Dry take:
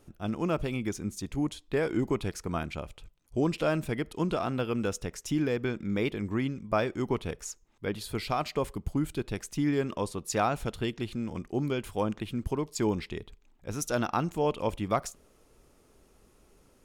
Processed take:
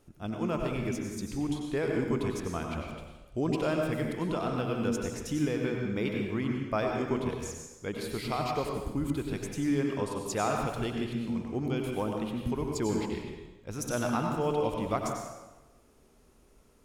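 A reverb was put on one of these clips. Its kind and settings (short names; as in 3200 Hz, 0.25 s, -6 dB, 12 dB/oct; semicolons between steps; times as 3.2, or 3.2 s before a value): plate-style reverb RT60 1.1 s, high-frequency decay 0.8×, pre-delay 80 ms, DRR 1 dB; gain -3.5 dB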